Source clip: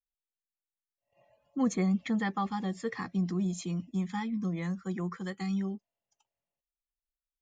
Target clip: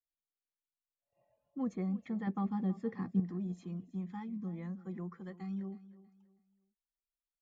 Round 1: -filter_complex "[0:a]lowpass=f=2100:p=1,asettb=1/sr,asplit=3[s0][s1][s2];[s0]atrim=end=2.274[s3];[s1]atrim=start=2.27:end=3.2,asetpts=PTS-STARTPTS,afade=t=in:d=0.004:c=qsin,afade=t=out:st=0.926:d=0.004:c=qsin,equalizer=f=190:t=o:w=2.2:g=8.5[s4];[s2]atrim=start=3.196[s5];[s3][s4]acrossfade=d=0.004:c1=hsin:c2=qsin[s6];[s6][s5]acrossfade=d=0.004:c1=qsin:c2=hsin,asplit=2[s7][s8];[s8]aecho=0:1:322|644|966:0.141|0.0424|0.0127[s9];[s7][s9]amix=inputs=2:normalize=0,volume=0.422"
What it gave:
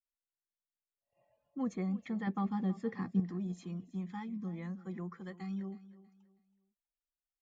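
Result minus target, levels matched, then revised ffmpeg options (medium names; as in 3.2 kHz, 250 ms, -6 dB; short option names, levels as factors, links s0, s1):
2 kHz band +4.0 dB
-filter_complex "[0:a]lowpass=f=930:p=1,asettb=1/sr,asplit=3[s0][s1][s2];[s0]atrim=end=2.274[s3];[s1]atrim=start=2.27:end=3.2,asetpts=PTS-STARTPTS,afade=t=in:d=0.004:c=qsin,afade=t=out:st=0.926:d=0.004:c=qsin,equalizer=f=190:t=o:w=2.2:g=8.5[s4];[s2]atrim=start=3.196[s5];[s3][s4]acrossfade=d=0.004:c1=hsin:c2=qsin[s6];[s6][s5]acrossfade=d=0.004:c1=qsin:c2=hsin,asplit=2[s7][s8];[s8]aecho=0:1:322|644|966:0.141|0.0424|0.0127[s9];[s7][s9]amix=inputs=2:normalize=0,volume=0.422"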